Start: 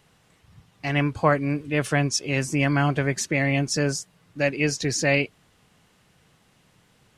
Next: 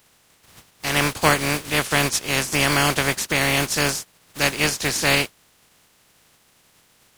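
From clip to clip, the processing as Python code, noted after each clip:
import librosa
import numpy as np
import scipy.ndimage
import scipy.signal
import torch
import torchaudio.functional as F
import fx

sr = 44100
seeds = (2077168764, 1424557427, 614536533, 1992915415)

y = fx.spec_flatten(x, sr, power=0.36)
y = y * 10.0 ** (2.5 / 20.0)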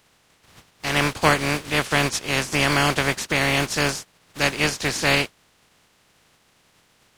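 y = fx.high_shelf(x, sr, hz=9100.0, db=-12.0)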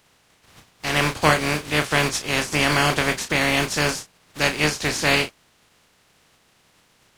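y = fx.doubler(x, sr, ms=33.0, db=-8.5)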